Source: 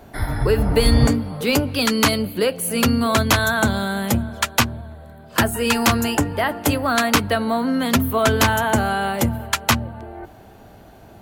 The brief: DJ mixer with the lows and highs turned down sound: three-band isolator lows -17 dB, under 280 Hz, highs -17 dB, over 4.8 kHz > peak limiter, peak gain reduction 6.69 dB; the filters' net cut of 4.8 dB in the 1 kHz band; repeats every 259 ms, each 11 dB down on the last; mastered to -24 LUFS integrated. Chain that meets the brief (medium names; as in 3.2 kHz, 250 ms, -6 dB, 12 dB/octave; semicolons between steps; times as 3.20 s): three-band isolator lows -17 dB, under 280 Hz, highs -17 dB, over 4.8 kHz; peaking EQ 1 kHz -6.5 dB; feedback delay 259 ms, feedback 28%, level -11 dB; trim +1.5 dB; peak limiter -12.5 dBFS